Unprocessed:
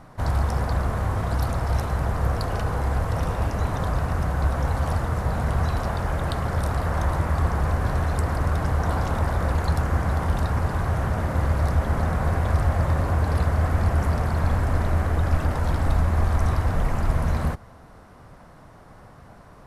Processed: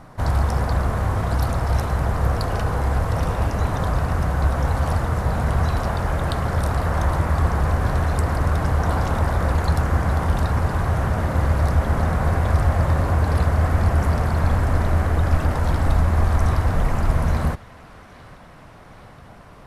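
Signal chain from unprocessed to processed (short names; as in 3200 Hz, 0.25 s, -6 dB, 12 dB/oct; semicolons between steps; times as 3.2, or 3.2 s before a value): narrowing echo 0.819 s, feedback 81%, band-pass 2900 Hz, level -17 dB; gain +3 dB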